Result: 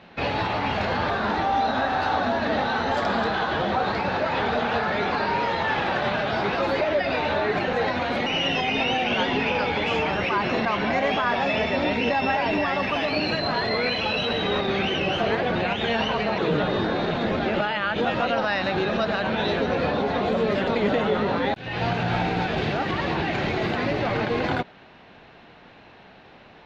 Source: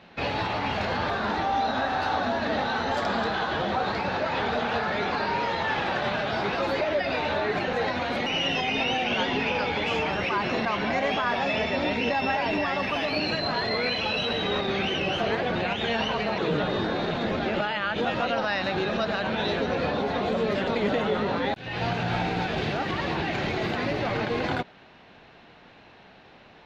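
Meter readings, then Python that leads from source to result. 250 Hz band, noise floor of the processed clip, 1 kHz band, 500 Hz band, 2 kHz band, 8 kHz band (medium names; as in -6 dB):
+3.0 dB, -49 dBFS, +3.0 dB, +3.0 dB, +2.5 dB, no reading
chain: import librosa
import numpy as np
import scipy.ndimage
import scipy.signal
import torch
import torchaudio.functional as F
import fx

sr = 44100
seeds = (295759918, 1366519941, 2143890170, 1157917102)

y = fx.high_shelf(x, sr, hz=5600.0, db=-6.5)
y = y * librosa.db_to_amplitude(3.0)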